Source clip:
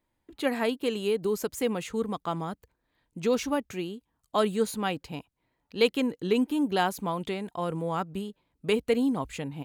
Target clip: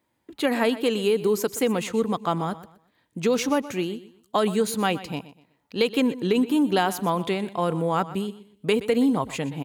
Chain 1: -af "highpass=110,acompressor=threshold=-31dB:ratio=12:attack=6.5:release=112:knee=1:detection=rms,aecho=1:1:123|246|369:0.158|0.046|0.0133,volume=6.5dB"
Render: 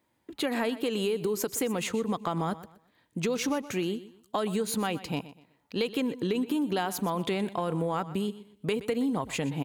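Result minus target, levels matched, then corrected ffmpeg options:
compressor: peak gain reduction +8 dB
-af "highpass=110,acompressor=threshold=-22.5dB:ratio=12:attack=6.5:release=112:knee=1:detection=rms,aecho=1:1:123|246|369:0.158|0.046|0.0133,volume=6.5dB"

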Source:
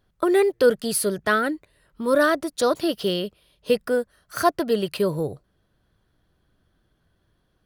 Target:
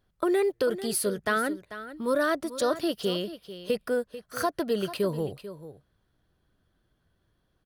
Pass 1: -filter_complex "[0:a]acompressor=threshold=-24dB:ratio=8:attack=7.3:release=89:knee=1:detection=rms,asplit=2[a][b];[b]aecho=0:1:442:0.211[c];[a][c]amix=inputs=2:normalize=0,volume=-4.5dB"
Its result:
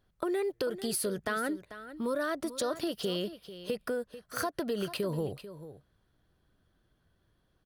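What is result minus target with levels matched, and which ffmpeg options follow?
compressor: peak gain reduction +7 dB
-filter_complex "[0:a]acompressor=threshold=-16dB:ratio=8:attack=7.3:release=89:knee=1:detection=rms,asplit=2[a][b];[b]aecho=0:1:442:0.211[c];[a][c]amix=inputs=2:normalize=0,volume=-4.5dB"

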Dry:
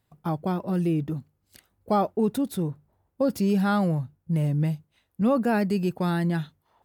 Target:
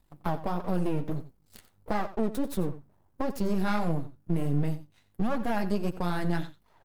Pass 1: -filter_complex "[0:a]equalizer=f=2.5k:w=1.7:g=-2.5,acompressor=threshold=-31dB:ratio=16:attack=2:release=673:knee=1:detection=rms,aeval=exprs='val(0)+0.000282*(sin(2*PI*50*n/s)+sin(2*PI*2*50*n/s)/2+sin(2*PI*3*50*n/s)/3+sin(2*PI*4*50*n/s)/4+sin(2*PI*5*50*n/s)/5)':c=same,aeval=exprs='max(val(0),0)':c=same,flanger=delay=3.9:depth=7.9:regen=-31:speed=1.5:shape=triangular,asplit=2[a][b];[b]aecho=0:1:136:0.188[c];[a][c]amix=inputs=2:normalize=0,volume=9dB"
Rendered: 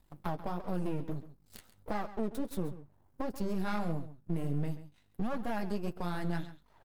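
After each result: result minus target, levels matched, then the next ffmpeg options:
echo 46 ms late; compressor: peak gain reduction +6 dB
-filter_complex "[0:a]equalizer=f=2.5k:w=1.7:g=-2.5,acompressor=threshold=-31dB:ratio=16:attack=2:release=673:knee=1:detection=rms,aeval=exprs='val(0)+0.000282*(sin(2*PI*50*n/s)+sin(2*PI*2*50*n/s)/2+sin(2*PI*3*50*n/s)/3+sin(2*PI*4*50*n/s)/4+sin(2*PI*5*50*n/s)/5)':c=same,aeval=exprs='max(val(0),0)':c=same,flanger=delay=3.9:depth=7.9:regen=-31:speed=1.5:shape=triangular,asplit=2[a][b];[b]aecho=0:1:90:0.188[c];[a][c]amix=inputs=2:normalize=0,volume=9dB"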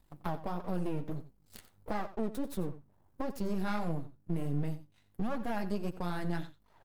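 compressor: peak gain reduction +6 dB
-filter_complex "[0:a]equalizer=f=2.5k:w=1.7:g=-2.5,acompressor=threshold=-24.5dB:ratio=16:attack=2:release=673:knee=1:detection=rms,aeval=exprs='val(0)+0.000282*(sin(2*PI*50*n/s)+sin(2*PI*2*50*n/s)/2+sin(2*PI*3*50*n/s)/3+sin(2*PI*4*50*n/s)/4+sin(2*PI*5*50*n/s)/5)':c=same,aeval=exprs='max(val(0),0)':c=same,flanger=delay=3.9:depth=7.9:regen=-31:speed=1.5:shape=triangular,asplit=2[a][b];[b]aecho=0:1:90:0.188[c];[a][c]amix=inputs=2:normalize=0,volume=9dB"

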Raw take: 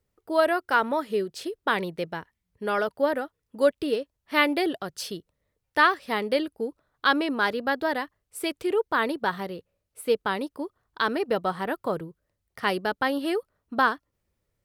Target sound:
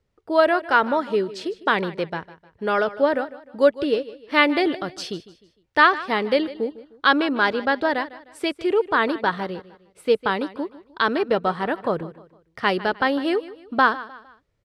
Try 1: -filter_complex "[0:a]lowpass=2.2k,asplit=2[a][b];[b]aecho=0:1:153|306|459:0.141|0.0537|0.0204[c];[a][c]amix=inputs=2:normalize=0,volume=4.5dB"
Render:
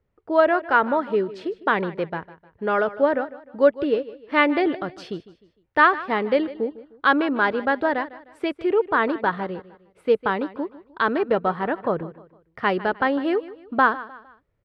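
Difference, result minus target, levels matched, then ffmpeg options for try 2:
4000 Hz band -7.0 dB
-filter_complex "[0:a]lowpass=5.3k,asplit=2[a][b];[b]aecho=0:1:153|306|459:0.141|0.0537|0.0204[c];[a][c]amix=inputs=2:normalize=0,volume=4.5dB"

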